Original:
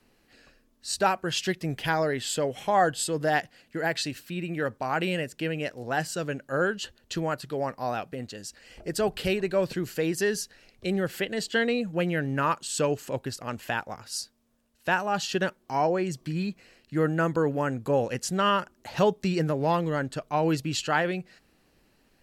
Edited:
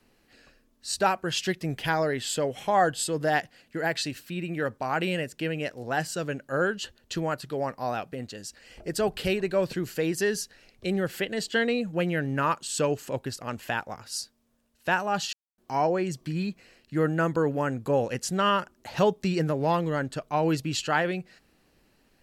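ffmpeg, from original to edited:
-filter_complex "[0:a]asplit=3[s0][s1][s2];[s0]atrim=end=15.33,asetpts=PTS-STARTPTS,afade=t=out:st=15.326:d=0.004:c=hsin[s3];[s1]atrim=start=15.33:end=15.58,asetpts=PTS-STARTPTS,volume=0[s4];[s2]atrim=start=15.58,asetpts=PTS-STARTPTS,afade=t=in:d=0.004:c=hsin[s5];[s3][s4][s5]concat=n=3:v=0:a=1"

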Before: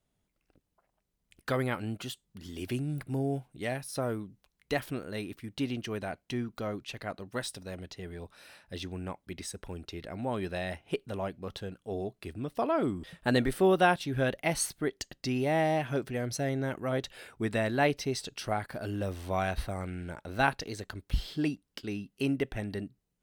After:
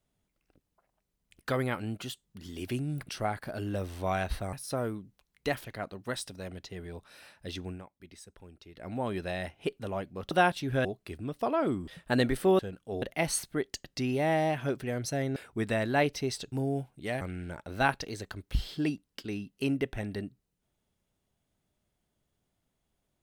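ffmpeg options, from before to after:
-filter_complex "[0:a]asplit=13[s0][s1][s2][s3][s4][s5][s6][s7][s8][s9][s10][s11][s12];[s0]atrim=end=3.092[s13];[s1]atrim=start=18.358:end=19.802[s14];[s2]atrim=start=3.778:end=4.902[s15];[s3]atrim=start=6.918:end=9.1,asetpts=PTS-STARTPTS,afade=t=out:st=2.052:d=0.13:silence=0.281838[s16];[s4]atrim=start=9.1:end=10.02,asetpts=PTS-STARTPTS,volume=0.282[s17];[s5]atrim=start=10.02:end=11.582,asetpts=PTS-STARTPTS,afade=t=in:d=0.13:silence=0.281838[s18];[s6]atrim=start=13.748:end=14.292[s19];[s7]atrim=start=12.008:end=13.752[s20];[s8]atrim=start=11.578:end=12.012[s21];[s9]atrim=start=14.288:end=16.632[s22];[s10]atrim=start=17.198:end=18.362[s23];[s11]atrim=start=3.088:end=3.782[s24];[s12]atrim=start=19.798[s25];[s13][s14]acrossfade=d=0.004:c1=hsin:c2=hsin[s26];[s26][s15]acrossfade=d=0.004:c1=hsin:c2=hsin[s27];[s16][s17][s18]concat=n=3:v=0:a=1[s28];[s27][s28]acrossfade=d=0.004:c1=hsin:c2=hsin[s29];[s29][s19]acrossfade=d=0.004:c1=hsin:c2=hsin[s30];[s30][s20]acrossfade=d=0.004:c1=hsin:c2=hsin[s31];[s31][s21]acrossfade=d=0.004:c1=hsin:c2=hsin[s32];[s32][s22]acrossfade=d=0.004:c1=hsin:c2=hsin[s33];[s33][s23]acrossfade=d=0.004:c1=hsin:c2=hsin[s34];[s34][s24]acrossfade=d=0.004:c1=hsin:c2=hsin[s35];[s35][s25]acrossfade=d=0.004:c1=hsin:c2=hsin"

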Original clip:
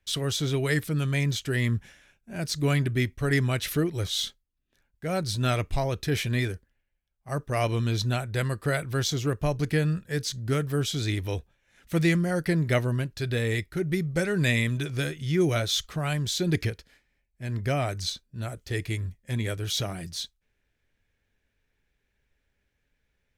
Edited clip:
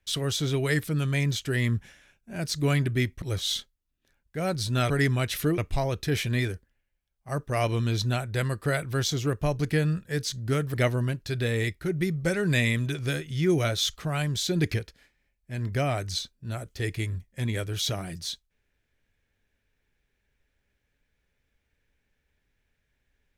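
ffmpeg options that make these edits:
-filter_complex "[0:a]asplit=5[s0][s1][s2][s3][s4];[s0]atrim=end=3.222[s5];[s1]atrim=start=3.898:end=5.582[s6];[s2]atrim=start=3.218:end=3.902[s7];[s3]atrim=start=5.578:end=10.742[s8];[s4]atrim=start=12.648[s9];[s5][s6]acrossfade=d=0.004:c1=hsin:c2=hsin[s10];[s10][s7]acrossfade=d=0.004:c1=hsin:c2=hsin[s11];[s11][s8]acrossfade=d=0.004:c1=hsin:c2=hsin[s12];[s12][s9]acrossfade=d=0.004:c1=hsin:c2=hsin"

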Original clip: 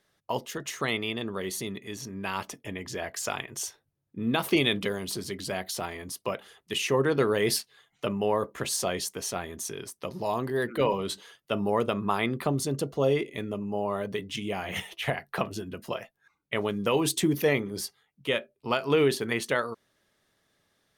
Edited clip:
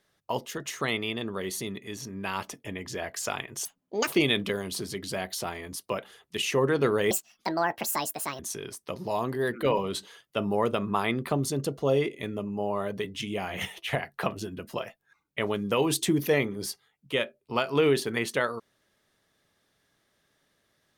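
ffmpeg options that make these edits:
-filter_complex "[0:a]asplit=5[s0][s1][s2][s3][s4];[s0]atrim=end=3.654[s5];[s1]atrim=start=3.65:end=4.44,asetpts=PTS-STARTPTS,asetrate=81585,aresample=44100[s6];[s2]atrim=start=4.436:end=7.474[s7];[s3]atrim=start=7.47:end=9.54,asetpts=PTS-STARTPTS,asetrate=71001,aresample=44100[s8];[s4]atrim=start=9.536[s9];[s5][s6]acrossfade=d=0.004:c1=hsin:c2=hsin[s10];[s10][s7]acrossfade=d=0.004:c1=hsin:c2=hsin[s11];[s11][s8]acrossfade=d=0.004:c1=hsin:c2=hsin[s12];[s12][s9]acrossfade=d=0.004:c1=hsin:c2=hsin"

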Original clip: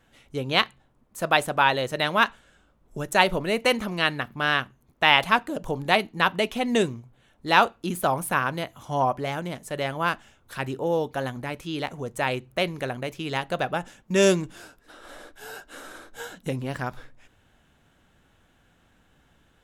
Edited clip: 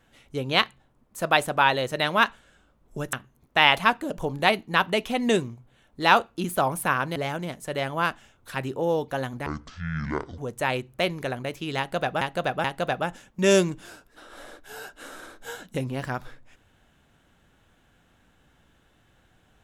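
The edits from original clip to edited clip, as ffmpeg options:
-filter_complex "[0:a]asplit=7[s0][s1][s2][s3][s4][s5][s6];[s0]atrim=end=3.132[s7];[s1]atrim=start=4.588:end=8.622[s8];[s2]atrim=start=9.188:end=11.494[s9];[s3]atrim=start=11.49:end=11.96,asetpts=PTS-STARTPTS,asetrate=22491,aresample=44100,atrim=end_sample=40641,asetpts=PTS-STARTPTS[s10];[s4]atrim=start=11.956:end=13.792[s11];[s5]atrim=start=13.358:end=13.792[s12];[s6]atrim=start=13.358[s13];[s7][s8]acrossfade=d=0.004:c1=hsin:c2=hsin[s14];[s14][s9]acrossfade=d=0.004:c1=hsin:c2=hsin[s15];[s15][s10]acrossfade=d=0.004:c1=hsin:c2=hsin[s16];[s16][s11]acrossfade=d=0.004:c1=hsin:c2=hsin[s17];[s17][s12]acrossfade=d=0.004:c1=hsin:c2=hsin[s18];[s18][s13]acrossfade=d=0.004:c1=hsin:c2=hsin"

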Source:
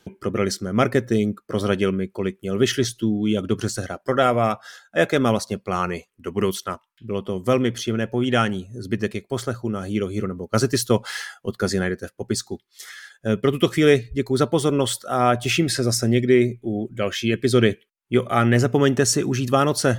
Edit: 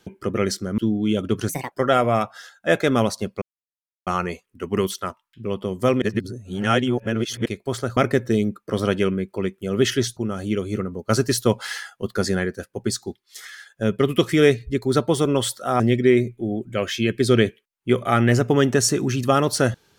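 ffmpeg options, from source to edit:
-filter_complex "[0:a]asplit=10[s0][s1][s2][s3][s4][s5][s6][s7][s8][s9];[s0]atrim=end=0.782[s10];[s1]atrim=start=2.978:end=3.694[s11];[s2]atrim=start=3.69:end=4.01,asetpts=PTS-STARTPTS,asetrate=62181,aresample=44100[s12];[s3]atrim=start=4.006:end=5.71,asetpts=PTS-STARTPTS,afade=t=out:st=1.7:d=0.004:c=hsin,apad=pad_dur=0.65[s13];[s4]atrim=start=5.71:end=7.662,asetpts=PTS-STARTPTS,afade=t=in:d=0.004:c=hsin[s14];[s5]atrim=start=7.658:end=9.102,asetpts=PTS-STARTPTS,areverse[s15];[s6]atrim=start=9.098:end=9.612[s16];[s7]atrim=start=0.778:end=2.982[s17];[s8]atrim=start=9.608:end=15.242[s18];[s9]atrim=start=16.038[s19];[s10][s11]acrossfade=d=0.004:c1=hsin:c2=hsin[s20];[s20][s12]acrossfade=d=0.004:c1=hsin:c2=hsin[s21];[s13][s14]concat=n=2:v=0:a=1[s22];[s21][s22]acrossfade=d=0.004:c1=hsin:c2=hsin[s23];[s23][s15]acrossfade=d=0.004:c1=hsin:c2=hsin[s24];[s24][s16]acrossfade=d=0.004:c1=hsin:c2=hsin[s25];[s25][s17]acrossfade=d=0.004:c1=hsin:c2=hsin[s26];[s26][s18]acrossfade=d=0.004:c1=hsin:c2=hsin[s27];[s27][s19]acrossfade=d=0.004:c1=hsin:c2=hsin"

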